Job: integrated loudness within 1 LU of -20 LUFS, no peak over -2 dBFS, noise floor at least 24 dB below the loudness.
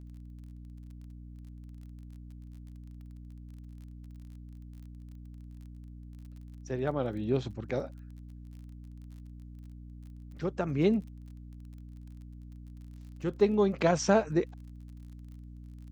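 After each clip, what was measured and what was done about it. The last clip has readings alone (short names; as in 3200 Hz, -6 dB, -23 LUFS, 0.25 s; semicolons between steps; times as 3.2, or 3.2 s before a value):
ticks 31/s; hum 60 Hz; harmonics up to 300 Hz; hum level -44 dBFS; loudness -30.0 LUFS; peak -11.0 dBFS; loudness target -20.0 LUFS
-> de-click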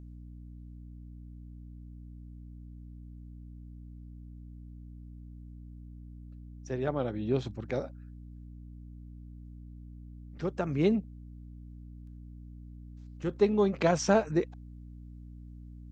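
ticks 0.13/s; hum 60 Hz; harmonics up to 300 Hz; hum level -44 dBFS
-> notches 60/120/180/240/300 Hz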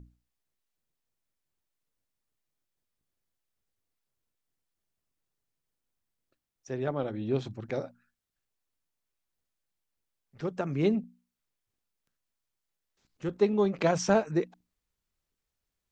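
hum none; loudness -30.0 LUFS; peak -10.5 dBFS; loudness target -20.0 LUFS
-> gain +10 dB; limiter -2 dBFS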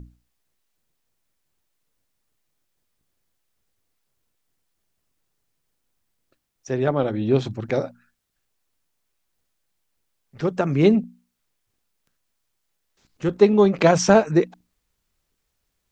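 loudness -20.0 LUFS; peak -2.0 dBFS; noise floor -76 dBFS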